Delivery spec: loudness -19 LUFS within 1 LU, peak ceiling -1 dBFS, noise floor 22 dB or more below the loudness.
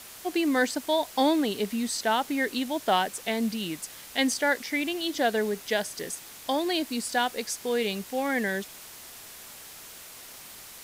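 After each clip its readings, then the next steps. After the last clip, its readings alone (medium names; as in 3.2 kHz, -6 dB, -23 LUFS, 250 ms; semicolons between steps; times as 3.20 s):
noise floor -46 dBFS; noise floor target -50 dBFS; loudness -27.5 LUFS; peak level -11.0 dBFS; loudness target -19.0 LUFS
-> noise reduction 6 dB, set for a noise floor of -46 dBFS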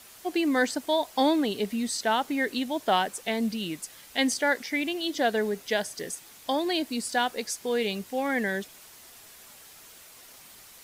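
noise floor -51 dBFS; loudness -28.0 LUFS; peak level -11.0 dBFS; loudness target -19.0 LUFS
-> trim +9 dB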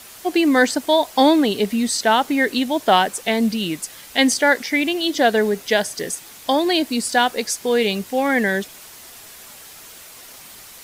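loudness -19.0 LUFS; peak level -2.0 dBFS; noise floor -42 dBFS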